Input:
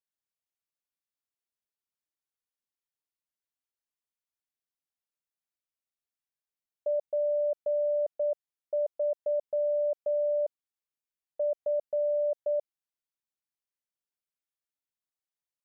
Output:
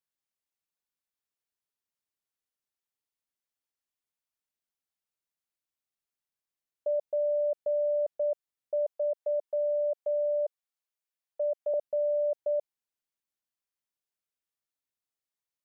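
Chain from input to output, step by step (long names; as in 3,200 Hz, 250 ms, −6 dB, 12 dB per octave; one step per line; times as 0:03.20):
0:08.90–0:11.74: high-pass filter 460 Hz 24 dB per octave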